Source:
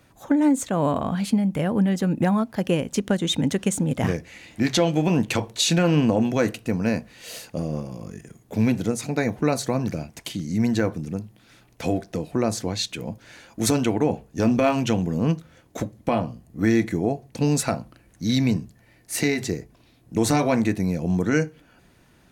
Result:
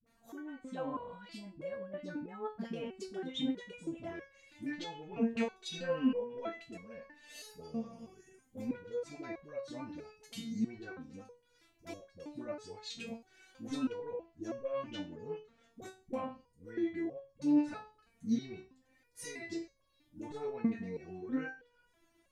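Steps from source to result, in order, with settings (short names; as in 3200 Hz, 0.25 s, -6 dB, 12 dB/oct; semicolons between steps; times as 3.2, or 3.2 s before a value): treble ducked by the level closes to 2100 Hz, closed at -17.5 dBFS; 5.12–7.6 comb 4.5 ms, depth 60%; limiter -14.5 dBFS, peak gain reduction 6.5 dB; dispersion highs, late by 66 ms, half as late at 400 Hz; stepped resonator 3.1 Hz 230–550 Hz; gain +1 dB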